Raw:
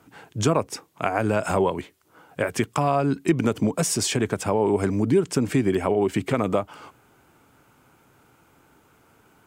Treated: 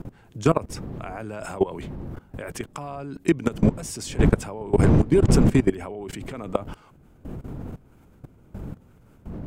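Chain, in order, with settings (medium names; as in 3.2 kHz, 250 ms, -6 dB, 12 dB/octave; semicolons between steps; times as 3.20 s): wind noise 200 Hz -27 dBFS; level held to a coarse grid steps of 19 dB; trim +4 dB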